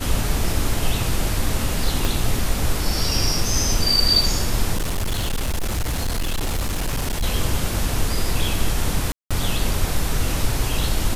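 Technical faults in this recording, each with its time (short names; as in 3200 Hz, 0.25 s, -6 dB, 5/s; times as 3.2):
2.05 pop
4.76–7.24 clipped -19 dBFS
9.12–9.31 gap 0.186 s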